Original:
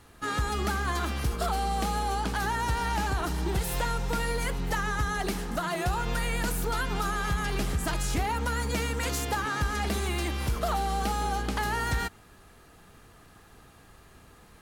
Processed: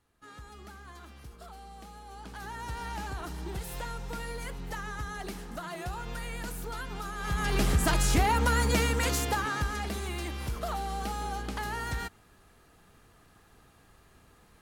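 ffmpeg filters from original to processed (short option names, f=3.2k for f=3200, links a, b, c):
-af "volume=4dB,afade=t=in:st=2.05:d=0.77:silence=0.298538,afade=t=in:st=7.16:d=0.52:silence=0.237137,afade=t=out:st=8.67:d=1.22:silence=0.334965"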